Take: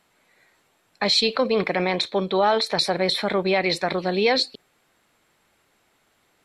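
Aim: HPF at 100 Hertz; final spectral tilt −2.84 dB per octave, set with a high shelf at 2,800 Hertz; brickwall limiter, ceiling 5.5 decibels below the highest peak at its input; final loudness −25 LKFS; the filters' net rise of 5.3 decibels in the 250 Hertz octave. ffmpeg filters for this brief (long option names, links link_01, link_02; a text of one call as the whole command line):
ffmpeg -i in.wav -af "highpass=100,equalizer=frequency=250:width_type=o:gain=8,highshelf=frequency=2800:gain=3.5,volume=-3dB,alimiter=limit=-14.5dB:level=0:latency=1" out.wav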